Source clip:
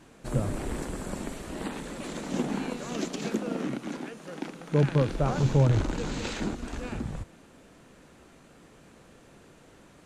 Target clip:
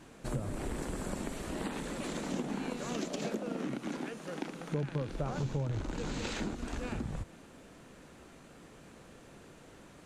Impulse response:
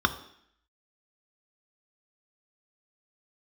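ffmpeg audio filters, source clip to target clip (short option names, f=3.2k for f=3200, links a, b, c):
-filter_complex "[0:a]asettb=1/sr,asplit=3[a][b][c];[a]atrim=end=3.054[d];[b]atrim=start=3.05:end=3.45,asetpts=PTS-STARTPTS,afade=t=in:d=0.004:c=qsin,afade=t=out:st=0.396:d=0.004:c=qsin,equalizer=f=600:t=o:w=0.43:g=9.5[e];[c]atrim=start=3.446[f];[d][e]acrossfade=d=0.004:c1=hsin:c2=qsin[g];[g][f]acrossfade=d=0.004:c1=qsin:c2=hsin,acompressor=threshold=-33dB:ratio=4"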